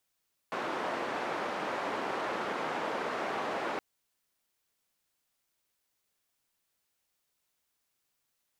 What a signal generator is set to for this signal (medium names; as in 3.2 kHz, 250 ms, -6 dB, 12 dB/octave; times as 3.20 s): noise band 300–1100 Hz, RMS -34.5 dBFS 3.27 s